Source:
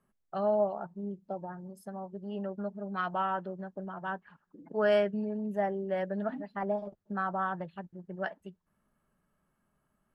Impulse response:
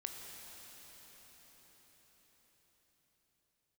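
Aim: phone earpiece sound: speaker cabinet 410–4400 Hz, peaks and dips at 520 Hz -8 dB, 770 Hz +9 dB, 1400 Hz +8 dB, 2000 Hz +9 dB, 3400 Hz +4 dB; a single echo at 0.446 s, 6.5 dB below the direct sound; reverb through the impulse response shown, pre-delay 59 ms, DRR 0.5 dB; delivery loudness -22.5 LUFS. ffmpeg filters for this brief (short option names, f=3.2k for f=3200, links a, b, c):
-filter_complex "[0:a]aecho=1:1:446:0.473,asplit=2[a][b];[1:a]atrim=start_sample=2205,adelay=59[c];[b][c]afir=irnorm=-1:irlink=0,volume=1dB[d];[a][d]amix=inputs=2:normalize=0,highpass=410,equalizer=f=520:t=q:w=4:g=-8,equalizer=f=770:t=q:w=4:g=9,equalizer=f=1.4k:t=q:w=4:g=8,equalizer=f=2k:t=q:w=4:g=9,equalizer=f=3.4k:t=q:w=4:g=4,lowpass=f=4.4k:w=0.5412,lowpass=f=4.4k:w=1.3066,volume=6dB"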